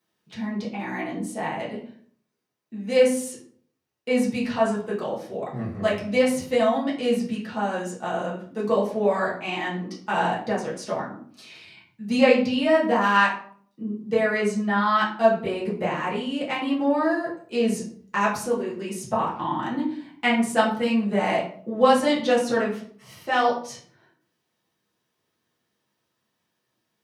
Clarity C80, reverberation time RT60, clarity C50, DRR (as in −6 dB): 10.5 dB, 0.55 s, 6.5 dB, −7.5 dB